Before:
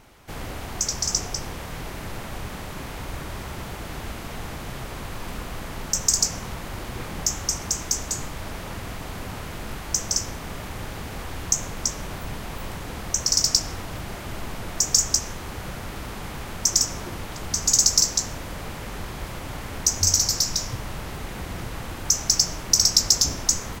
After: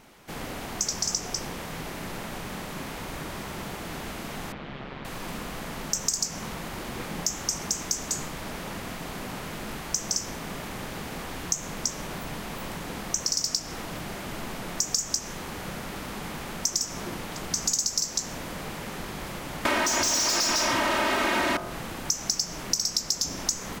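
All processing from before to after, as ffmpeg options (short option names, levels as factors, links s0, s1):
-filter_complex "[0:a]asettb=1/sr,asplit=3[s0][s1][s2];[s0]atrim=end=4.524[s3];[s1]atrim=start=4.52:end=5.05,asetpts=PTS-STARTPTS,afade=t=in:d=0.004:c=qsin,afade=t=out:st=0.526:d=0.004:c=qsin,lowpass=f=3700:w=0.5412,lowpass=f=3700:w=1.3066,tremolo=f=140:d=0.621[s4];[s2]atrim=start=5.046[s5];[s3][s4]acrossfade=d=0.004:c1=hsin:c2=qsin[s6];[s6][s5]acrossfade=d=0.004:c1=qsin:c2=hsin,asettb=1/sr,asplit=3[s7][s8][s9];[s7]atrim=end=19.654[s10];[s8]atrim=start=19.65:end=21.57,asetpts=PTS-STARTPTS,afade=t=in:d=0.004:c=qsin,afade=t=out:st=1.916:d=0.004:c=qsin,aecho=1:1:3.2:0.97,atrim=end_sample=84672,asplit=2[s11][s12];[s12]highpass=f=720:p=1,volume=35.5,asoftclip=type=tanh:threshold=0.75[s13];[s11][s13]amix=inputs=2:normalize=0,lowpass=f=2200:p=1,volume=0.501[s14];[s9]atrim=start=21.566[s15];[s10][s14]acrossfade=d=0.004:c1=hsin:c2=qsin[s16];[s16][s15]acrossfade=d=0.004:c1=qsin:c2=hsin,lowshelf=f=130:t=q:w=1.5:g=-7,bandreject=f=46.68:t=h:w=4,bandreject=f=93.36:t=h:w=4,bandreject=f=140.04:t=h:w=4,bandreject=f=186.72:t=h:w=4,bandreject=f=233.4:t=h:w=4,bandreject=f=280.08:t=h:w=4,bandreject=f=326.76:t=h:w=4,bandreject=f=373.44:t=h:w=4,bandreject=f=420.12:t=h:w=4,bandreject=f=466.8:t=h:w=4,bandreject=f=513.48:t=h:w=4,bandreject=f=560.16:t=h:w=4,bandreject=f=606.84:t=h:w=4,bandreject=f=653.52:t=h:w=4,bandreject=f=700.2:t=h:w=4,bandreject=f=746.88:t=h:w=4,bandreject=f=793.56:t=h:w=4,bandreject=f=840.24:t=h:w=4,bandreject=f=886.92:t=h:w=4,bandreject=f=933.6:t=h:w=4,bandreject=f=980.28:t=h:w=4,bandreject=f=1026.96:t=h:w=4,bandreject=f=1073.64:t=h:w=4,bandreject=f=1120.32:t=h:w=4,bandreject=f=1167:t=h:w=4,bandreject=f=1213.68:t=h:w=4,bandreject=f=1260.36:t=h:w=4,bandreject=f=1307.04:t=h:w=4,bandreject=f=1353.72:t=h:w=4,bandreject=f=1400.4:t=h:w=4,bandreject=f=1447.08:t=h:w=4,bandreject=f=1493.76:t=h:w=4,bandreject=f=1540.44:t=h:w=4,bandreject=f=1587.12:t=h:w=4,acompressor=threshold=0.0708:ratio=5"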